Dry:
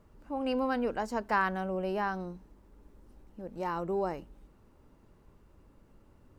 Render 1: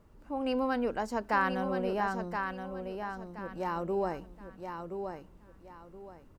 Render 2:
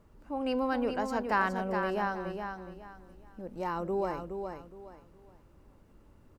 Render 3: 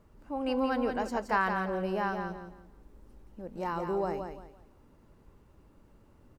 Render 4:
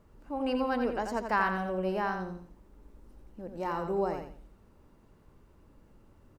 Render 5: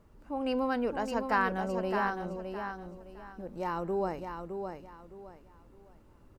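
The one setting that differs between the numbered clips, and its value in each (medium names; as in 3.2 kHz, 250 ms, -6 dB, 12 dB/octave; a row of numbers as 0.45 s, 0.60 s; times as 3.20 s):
feedback delay, time: 1023 ms, 417 ms, 171 ms, 86 ms, 613 ms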